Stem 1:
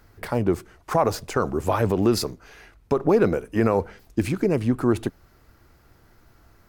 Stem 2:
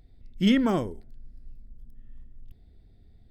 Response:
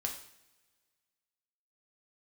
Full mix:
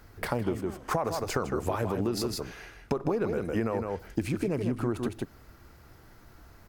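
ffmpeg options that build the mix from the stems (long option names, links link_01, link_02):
-filter_complex "[0:a]volume=0.5dB,asplit=4[link_01][link_02][link_03][link_04];[link_02]volume=-18.5dB[link_05];[link_03]volume=-6dB[link_06];[1:a]volume=-19dB,asplit=2[link_07][link_08];[link_08]volume=-4dB[link_09];[link_04]apad=whole_len=145531[link_10];[link_07][link_10]sidechaingate=range=-33dB:threshold=-43dB:ratio=16:detection=peak[link_11];[2:a]atrim=start_sample=2205[link_12];[link_05][link_09]amix=inputs=2:normalize=0[link_13];[link_13][link_12]afir=irnorm=-1:irlink=0[link_14];[link_06]aecho=0:1:158:1[link_15];[link_01][link_11][link_14][link_15]amix=inputs=4:normalize=0,acompressor=threshold=-26dB:ratio=6"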